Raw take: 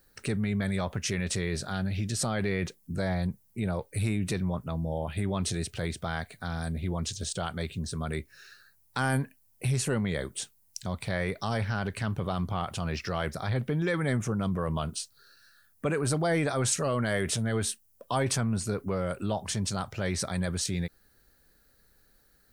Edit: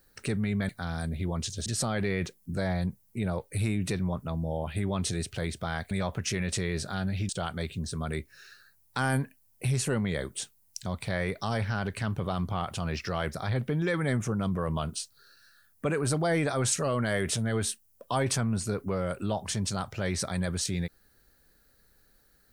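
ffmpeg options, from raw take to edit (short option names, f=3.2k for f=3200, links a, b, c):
-filter_complex "[0:a]asplit=5[a][b][c][d][e];[a]atrim=end=0.692[f];[b]atrim=start=6.318:end=7.292[g];[c]atrim=start=2.068:end=6.322[h];[d]atrim=start=0.688:end=2.072[i];[e]atrim=start=7.288[j];[f][g]acrossfade=d=0.004:c1=hsin:c2=hsin[k];[k][h]acrossfade=d=0.004:c1=hsin:c2=hsin[l];[l][i]acrossfade=d=0.004:c1=hsin:c2=hsin[m];[m][j]acrossfade=d=0.004:c1=hsin:c2=hsin"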